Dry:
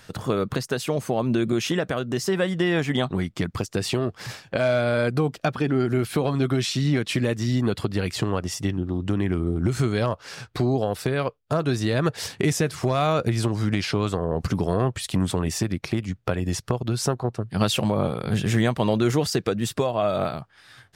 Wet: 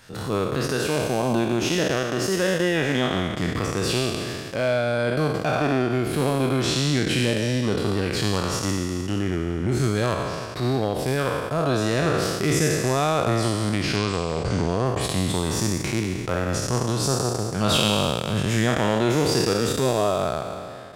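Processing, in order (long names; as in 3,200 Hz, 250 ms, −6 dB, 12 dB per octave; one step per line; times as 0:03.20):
peak hold with a decay on every bin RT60 2.28 s
0:13.96–0:14.86: Butterworth low-pass 9,400 Hz 72 dB per octave
transient designer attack −6 dB, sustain −10 dB
level −1.5 dB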